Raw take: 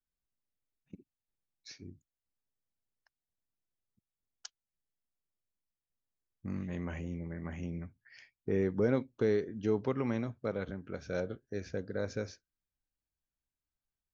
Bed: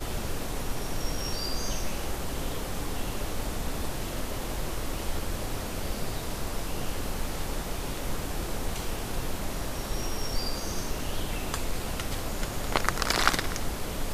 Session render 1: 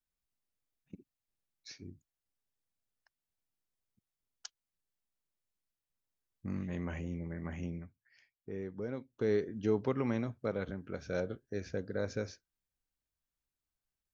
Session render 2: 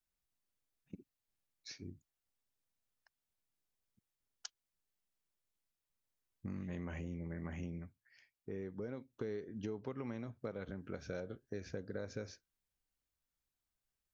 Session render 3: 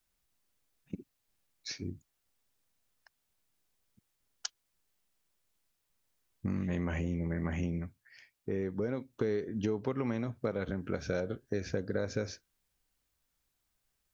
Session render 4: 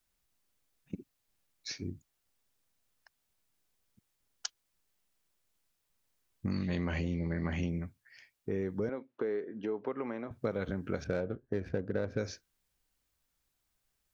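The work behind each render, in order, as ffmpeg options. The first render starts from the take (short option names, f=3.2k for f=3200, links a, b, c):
-filter_complex "[0:a]asplit=3[a][b][c];[a]atrim=end=7.94,asetpts=PTS-STARTPTS,afade=t=out:st=7.67:d=0.27:silence=0.298538[d];[b]atrim=start=7.94:end=9.09,asetpts=PTS-STARTPTS,volume=-10.5dB[e];[c]atrim=start=9.09,asetpts=PTS-STARTPTS,afade=t=in:d=0.27:silence=0.298538[f];[d][e][f]concat=n=3:v=0:a=1"
-af "acompressor=threshold=-39dB:ratio=6"
-af "volume=9.5dB"
-filter_complex "[0:a]asettb=1/sr,asplit=3[a][b][c];[a]atrim=end=6.514[d];[b]atrim=start=6.51:end=7.69,asetpts=PTS-STARTPTS,afade=t=in:d=0.004:c=qsin,afade=t=out:st=1.176:d=0.004:c=qsin,lowpass=f=4.4k:t=q:w=15[e];[c]atrim=start=7.686[f];[d][e]acrossfade=d=0.004:c1=hsin:c2=qsin[g];[g][f]acrossfade=d=0.004:c1=qsin:c2=hsin,asettb=1/sr,asplit=3[h][i][j];[h]atrim=end=8.894[k];[i]atrim=start=8.89:end=10.31,asetpts=PTS-STARTPTS,afade=t=in:d=0.004:c=qsin,afade=t=out:st=1.416:d=0.004:c=qsin,highpass=320,lowpass=2.1k[l];[j]atrim=start=10.306[m];[k][l]acrossfade=d=0.004:c1=hsin:c2=qsin[n];[n][m]acrossfade=d=0.004:c1=qsin:c2=hsin,asettb=1/sr,asplit=3[o][p][q];[o]atrim=end=11.044[r];[p]atrim=start=11.04:end=12.18,asetpts=PTS-STARTPTS,afade=t=in:d=0.004:c=qsin,afade=t=out:st=1.136:d=0.004:c=qsin,adynamicsmooth=sensitivity=5:basefreq=1.3k[s];[q]atrim=start=12.176[t];[r][s]acrossfade=d=0.004:c1=hsin:c2=qsin[u];[u][t]acrossfade=d=0.004:c1=qsin:c2=hsin"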